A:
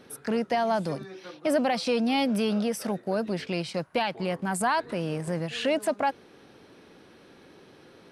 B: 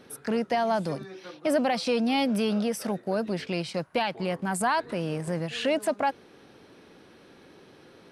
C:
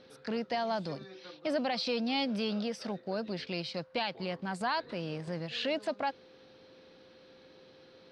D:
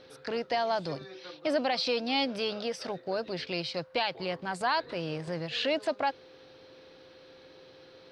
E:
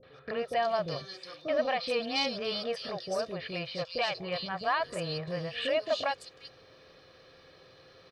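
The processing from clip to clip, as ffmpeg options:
-af anull
-af "lowpass=f=4.4k:t=q:w=2.5,aeval=exprs='val(0)+0.00316*sin(2*PI*520*n/s)':c=same,volume=-7.5dB"
-af "equalizer=f=210:t=o:w=0.33:g=-13,volume=4dB"
-filter_complex "[0:a]aecho=1:1:1.7:0.51,acrossover=split=480|3600[a][b][c];[b]adelay=30[d];[c]adelay=380[e];[a][d][e]amix=inputs=3:normalize=0"

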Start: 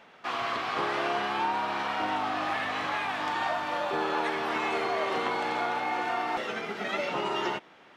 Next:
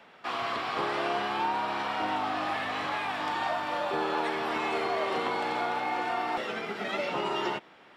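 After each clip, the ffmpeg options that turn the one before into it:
-filter_complex "[0:a]bandreject=f=6.3k:w=11,acrossover=split=120|1400|2100[a][b][c][d];[c]alimiter=level_in=14.5dB:limit=-24dB:level=0:latency=1,volume=-14.5dB[e];[a][b][e][d]amix=inputs=4:normalize=0"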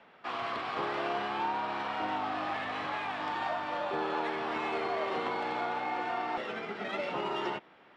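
-af "adynamicsmooth=sensitivity=2.5:basefreq=4.6k,volume=-3dB"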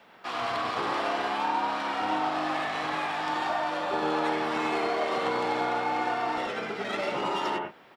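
-filter_complex "[0:a]acrossover=split=2900[a][b];[a]aecho=1:1:90.38|122.4:0.891|0.398[c];[b]crystalizer=i=3:c=0[d];[c][d]amix=inputs=2:normalize=0,volume=2dB"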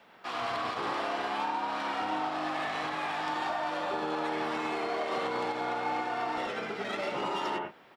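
-af "alimiter=limit=-20dB:level=0:latency=1:release=138,volume=-2.5dB"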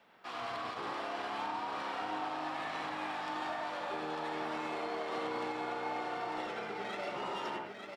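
-af "aecho=1:1:898:0.501,volume=-6.5dB"

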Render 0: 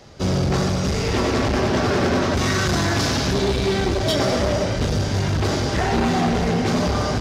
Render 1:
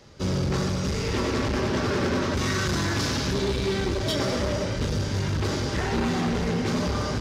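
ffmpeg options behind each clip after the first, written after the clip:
-af "equalizer=f=710:w=5.7:g=-9.5,volume=-5dB"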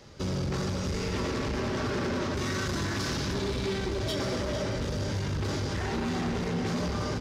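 -filter_complex "[0:a]asplit=2[a][b];[b]adelay=449,volume=-7dB,highshelf=f=4k:g=-10.1[c];[a][c]amix=inputs=2:normalize=0,asoftclip=type=tanh:threshold=-15.5dB,alimiter=limit=-24dB:level=0:latency=1"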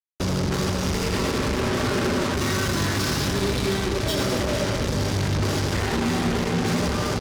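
-af "aecho=1:1:82:0.237,acrusher=bits=4:mix=0:aa=0.5,volume=5.5dB"

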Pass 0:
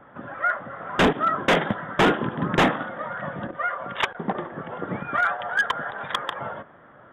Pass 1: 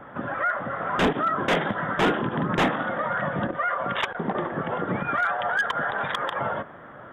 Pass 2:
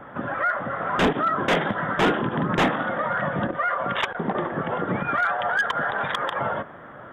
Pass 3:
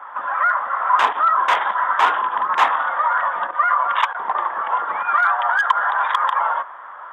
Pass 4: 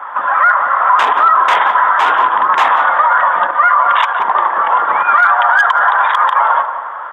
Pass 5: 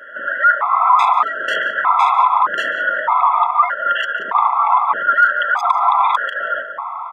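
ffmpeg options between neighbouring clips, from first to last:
-af "acompressor=threshold=-22dB:ratio=6,alimiter=limit=-23.5dB:level=0:latency=1:release=72,volume=6.5dB"
-af "acontrast=40,volume=-4dB"
-af "highpass=f=1k:t=q:w=4.9"
-filter_complex "[0:a]asplit=2[a][b];[b]adelay=180,lowpass=f=1.5k:p=1,volume=-9.5dB,asplit=2[c][d];[d]adelay=180,lowpass=f=1.5k:p=1,volume=0.51,asplit=2[e][f];[f]adelay=180,lowpass=f=1.5k:p=1,volume=0.51,asplit=2[g][h];[h]adelay=180,lowpass=f=1.5k:p=1,volume=0.51,asplit=2[i][j];[j]adelay=180,lowpass=f=1.5k:p=1,volume=0.51,asplit=2[k][l];[l]adelay=180,lowpass=f=1.5k:p=1,volume=0.51[m];[c][e][g][i][k][m]amix=inputs=6:normalize=0[n];[a][n]amix=inputs=2:normalize=0,alimiter=level_in=10.5dB:limit=-1dB:release=50:level=0:latency=1,volume=-1dB"
-af "aresample=32000,aresample=44100,aecho=1:1:143|286|429:0.112|0.0337|0.0101,afftfilt=real='re*gt(sin(2*PI*0.81*pts/sr)*(1-2*mod(floor(b*sr/1024/670),2)),0)':imag='im*gt(sin(2*PI*0.81*pts/sr)*(1-2*mod(floor(b*sr/1024/670),2)),0)':win_size=1024:overlap=0.75,volume=-1dB"

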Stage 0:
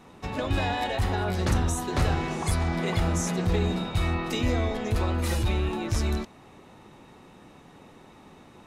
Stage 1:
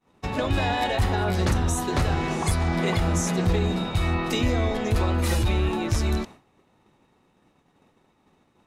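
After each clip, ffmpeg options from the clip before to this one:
-af "agate=range=-33dB:threshold=-39dB:ratio=3:detection=peak,alimiter=limit=-16.5dB:level=0:latency=1:release=280,volume=4dB"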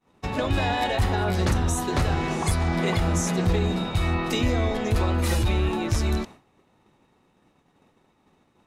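-af anull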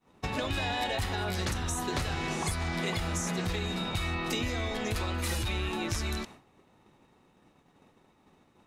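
-filter_complex "[0:a]acrossover=split=1200|2400[a][b][c];[a]acompressor=threshold=-32dB:ratio=4[d];[b]acompressor=threshold=-41dB:ratio=4[e];[c]acompressor=threshold=-35dB:ratio=4[f];[d][e][f]amix=inputs=3:normalize=0"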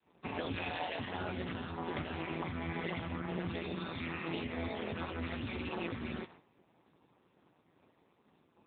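-af "tremolo=f=170:d=0.974,asoftclip=type=hard:threshold=-25.5dB,volume=1dB" -ar 8000 -c:a libopencore_amrnb -b:a 6700

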